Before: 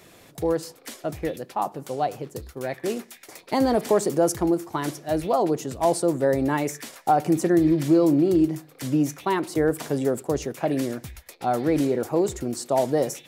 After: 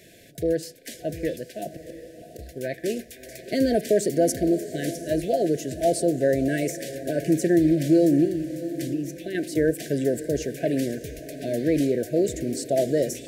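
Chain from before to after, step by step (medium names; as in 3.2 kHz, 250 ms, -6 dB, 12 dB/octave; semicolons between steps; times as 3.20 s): 1.68–2.39 s: inverted gate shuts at -23 dBFS, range -31 dB; 8.25–9.35 s: compression 2:1, threshold -33 dBFS, peak gain reduction 9.5 dB; echo that smears into a reverb 683 ms, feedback 44%, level -13 dB; FFT band-reject 720–1500 Hz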